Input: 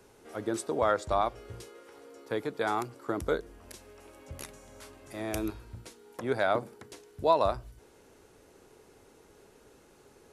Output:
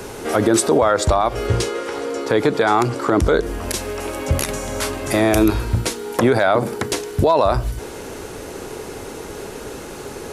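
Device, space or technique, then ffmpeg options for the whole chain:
loud club master: -filter_complex "[0:a]acompressor=threshold=-32dB:ratio=2.5,asoftclip=type=hard:threshold=-21.5dB,alimiter=level_in=31dB:limit=-1dB:release=50:level=0:latency=1,asettb=1/sr,asplit=3[a][b][c];[a]atrim=end=1.474[d];[b]atrim=start=1.47:end=3.43,asetpts=PTS-STARTPTS,afade=t=in:d=0.004:c=qsin,afade=t=out:st=1.956:d=0.004:c=qsin,lowpass=8.5k[e];[c]atrim=start=3.426[f];[d][e]acrossfade=d=0.004:c1=hsin:c2=qsin[g];[g][f]acrossfade=d=0.004:c1=qsin:c2=hsin,volume=-5dB"

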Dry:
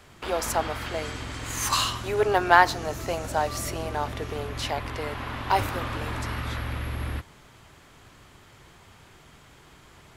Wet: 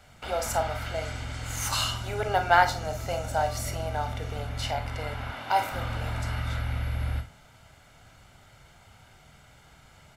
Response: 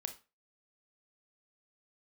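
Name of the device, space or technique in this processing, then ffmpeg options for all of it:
microphone above a desk: -filter_complex "[0:a]asettb=1/sr,asplit=3[a][b][c];[a]atrim=end=5.314[d];[b]atrim=start=5.31:end=5.72,asetpts=PTS-STARTPTS,afade=t=in:d=0.004:c=qsin,afade=t=out:st=0.406:d=0.004:c=qsin,highpass=230[e];[c]atrim=start=5.716[f];[d][e]acrossfade=d=0.004:c1=hsin:c2=qsin[g];[g][f]acrossfade=d=0.004:c1=qsin:c2=hsin,aecho=1:1:1.4:0.56[h];[1:a]atrim=start_sample=2205[i];[h][i]afir=irnorm=-1:irlink=0,volume=-2dB"

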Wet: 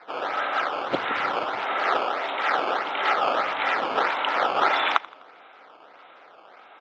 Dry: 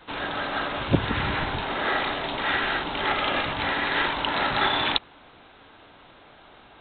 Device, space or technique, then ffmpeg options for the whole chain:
circuit-bent sampling toy: -filter_complex "[0:a]acrusher=samples=13:mix=1:aa=0.000001:lfo=1:lforange=20.8:lforate=1.6,highpass=420,equalizer=f=510:t=q:w=4:g=4,equalizer=f=740:t=q:w=4:g=5,equalizer=f=1.3k:t=q:w=4:g=8,equalizer=f=2.2k:t=q:w=4:g=5,lowpass=f=4k:w=0.5412,lowpass=f=4k:w=1.3066,asettb=1/sr,asplit=3[a][b][c];[a]atrim=end=2.004[d];[b]atrim=start=2:end=2.77,asetpts=PTS-STARTPTS,afade=t=in:d=0.004:c=qsin,afade=t=out:st=0.766:d=0.004:c=qsin,highpass=180[e];[c]atrim=start=2.766[f];[d][e]acrossfade=d=0.004:c1=hsin:c2=qsin[g];[g][f]acrossfade=d=0.004:c1=qsin:c2=hsin,aecho=1:1:84|168|252|336:0.0841|0.0421|0.021|0.0105,volume=-1dB"

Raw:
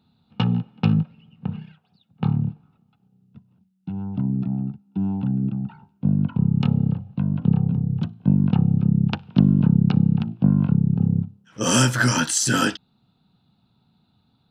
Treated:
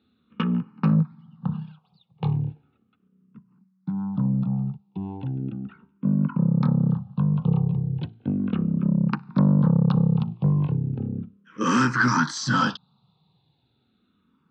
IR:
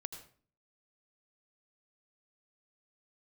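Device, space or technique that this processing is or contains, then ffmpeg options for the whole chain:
barber-pole phaser into a guitar amplifier: -filter_complex "[0:a]asplit=2[a][b];[b]afreqshift=-0.36[c];[a][c]amix=inputs=2:normalize=1,asoftclip=type=tanh:threshold=-15.5dB,highpass=86,equalizer=f=100:t=q:w=4:g=-7,equalizer=f=150:t=q:w=4:g=3,equalizer=f=660:t=q:w=4:g=-7,equalizer=f=1.1k:t=q:w=4:g=9,equalizer=f=2.8k:t=q:w=4:g=-4,lowpass=f=4.6k:w=0.5412,lowpass=f=4.6k:w=1.3066,volume=2.5dB"

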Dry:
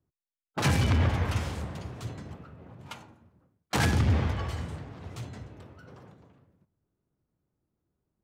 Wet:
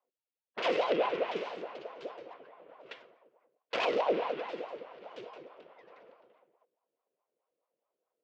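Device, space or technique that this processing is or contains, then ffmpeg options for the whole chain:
voice changer toy: -af "aeval=exprs='val(0)*sin(2*PI*590*n/s+590*0.6/4.7*sin(2*PI*4.7*n/s))':c=same,highpass=460,equalizer=f=490:t=q:w=4:g=6,equalizer=f=830:t=q:w=4:g=-8,equalizer=f=1.2k:t=q:w=4:g=-5,equalizer=f=1.7k:t=q:w=4:g=-5,equalizer=f=2.8k:t=q:w=4:g=3,equalizer=f=4k:t=q:w=4:g=-3,lowpass=f=4.2k:w=0.5412,lowpass=f=4.2k:w=1.3066"

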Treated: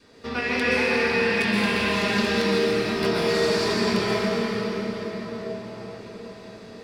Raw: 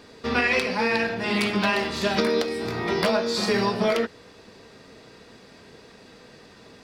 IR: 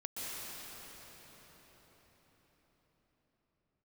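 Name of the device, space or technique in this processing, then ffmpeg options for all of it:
cathedral: -filter_complex "[1:a]atrim=start_sample=2205[a];[0:a][a]afir=irnorm=-1:irlink=0,adynamicequalizer=threshold=0.0158:dfrequency=720:dqfactor=1.3:tfrequency=720:tqfactor=1.3:attack=5:release=100:ratio=0.375:range=3:mode=cutabove:tftype=bell"

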